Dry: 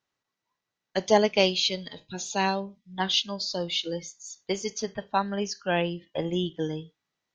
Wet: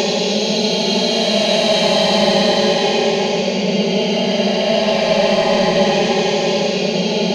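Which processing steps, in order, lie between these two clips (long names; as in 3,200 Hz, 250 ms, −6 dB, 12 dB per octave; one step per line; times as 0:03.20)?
echo that builds up and dies away 86 ms, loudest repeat 5, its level −4 dB
soft clipping −9 dBFS, distortion −22 dB
extreme stretch with random phases 38×, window 0.05 s, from 0:01.61
level +3 dB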